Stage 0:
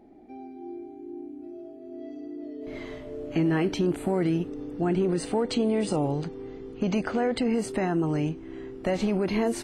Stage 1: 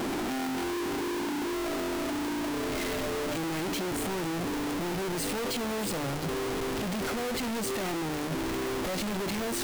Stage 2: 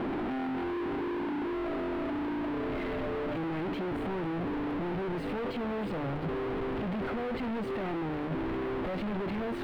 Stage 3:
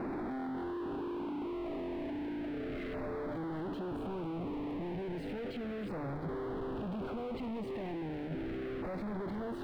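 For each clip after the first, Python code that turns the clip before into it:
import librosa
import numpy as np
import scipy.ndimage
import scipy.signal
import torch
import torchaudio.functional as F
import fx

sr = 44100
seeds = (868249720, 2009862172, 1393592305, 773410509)

y1 = np.sign(x) * np.sqrt(np.mean(np.square(x)))
y1 = fx.hum_notches(y1, sr, base_hz=50, count=3)
y1 = F.gain(torch.from_numpy(y1), -3.0).numpy()
y2 = fx.air_absorb(y1, sr, metres=490.0)
y3 = fx.filter_lfo_notch(y2, sr, shape='saw_down', hz=0.34, low_hz=880.0, high_hz=3200.0, q=1.2)
y3 = F.gain(torch.from_numpy(y3), -5.0).numpy()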